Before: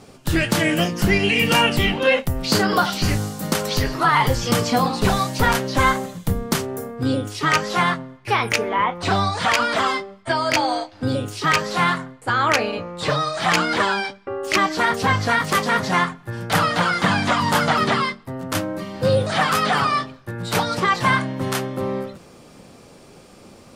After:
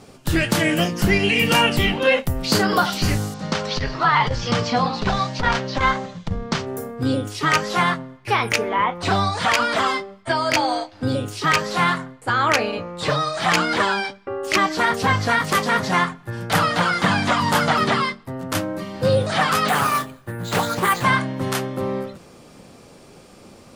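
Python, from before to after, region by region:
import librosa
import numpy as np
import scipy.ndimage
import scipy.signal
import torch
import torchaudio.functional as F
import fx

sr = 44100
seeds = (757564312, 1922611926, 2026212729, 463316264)

y = fx.chain(x, sr, fx.lowpass(hz=5600.0, slope=24),
    fx.peak_eq(hz=320.0, db=-6.0, octaves=0.78),
    fx.transformer_sat(knee_hz=93.0), at=(3.34, 6.67))
y = fx.chain(y, sr, fx.resample_bad(factor=4, down='filtered', up='hold'),
    fx.doppler_dist(depth_ms=0.3), at=(19.68, 21.04))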